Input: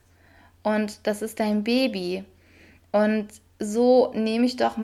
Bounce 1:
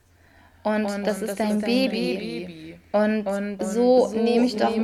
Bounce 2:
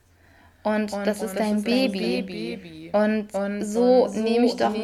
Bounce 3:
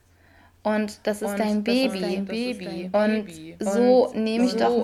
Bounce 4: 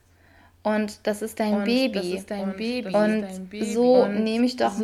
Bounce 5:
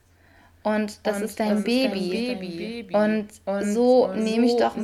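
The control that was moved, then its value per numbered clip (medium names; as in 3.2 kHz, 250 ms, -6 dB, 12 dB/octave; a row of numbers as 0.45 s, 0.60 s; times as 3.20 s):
ever faster or slower copies, time: 147 ms, 228 ms, 545 ms, 826 ms, 359 ms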